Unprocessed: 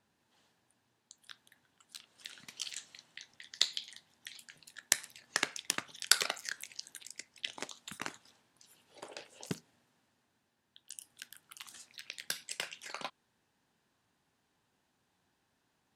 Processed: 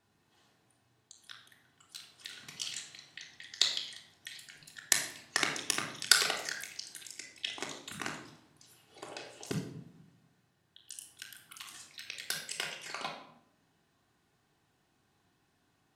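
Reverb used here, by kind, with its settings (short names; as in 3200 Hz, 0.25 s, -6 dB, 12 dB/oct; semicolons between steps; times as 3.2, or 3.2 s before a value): shoebox room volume 2000 m³, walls furnished, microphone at 3.4 m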